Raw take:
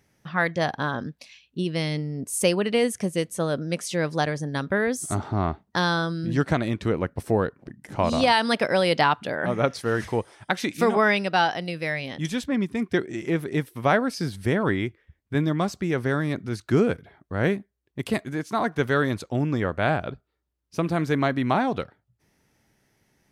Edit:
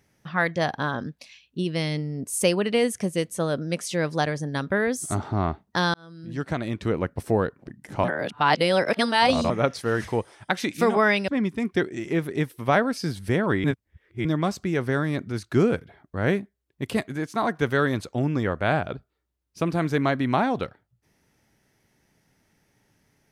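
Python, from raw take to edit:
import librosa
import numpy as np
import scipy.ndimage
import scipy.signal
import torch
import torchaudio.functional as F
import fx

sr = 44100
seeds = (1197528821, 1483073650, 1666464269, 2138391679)

y = fx.edit(x, sr, fx.fade_in_span(start_s=5.94, length_s=1.05),
    fx.reverse_span(start_s=8.04, length_s=1.46),
    fx.cut(start_s=11.28, length_s=1.17),
    fx.reverse_span(start_s=14.81, length_s=0.61), tone=tone)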